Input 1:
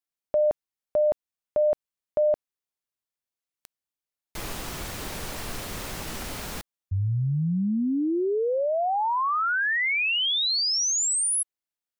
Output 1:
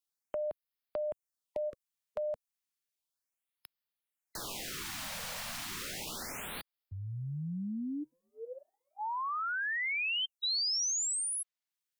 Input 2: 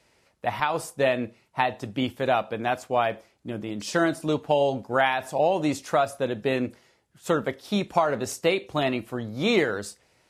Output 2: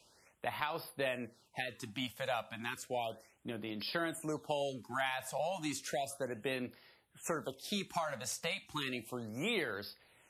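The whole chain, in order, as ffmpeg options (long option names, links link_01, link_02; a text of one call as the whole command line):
ffmpeg -i in.wav -filter_complex "[0:a]tiltshelf=frequency=1100:gain=-4,acrossover=split=130|6000[link_01][link_02][link_03];[link_01]acompressor=threshold=-58dB:ratio=2.5[link_04];[link_02]acompressor=threshold=-39dB:ratio=2[link_05];[link_03]acompressor=threshold=-44dB:ratio=2.5[link_06];[link_04][link_05][link_06]amix=inputs=3:normalize=0,afftfilt=real='re*(1-between(b*sr/1024,320*pow(7700/320,0.5+0.5*sin(2*PI*0.33*pts/sr))/1.41,320*pow(7700/320,0.5+0.5*sin(2*PI*0.33*pts/sr))*1.41))':imag='im*(1-between(b*sr/1024,320*pow(7700/320,0.5+0.5*sin(2*PI*0.33*pts/sr))/1.41,320*pow(7700/320,0.5+0.5*sin(2*PI*0.33*pts/sr))*1.41))':win_size=1024:overlap=0.75,volume=-2dB" out.wav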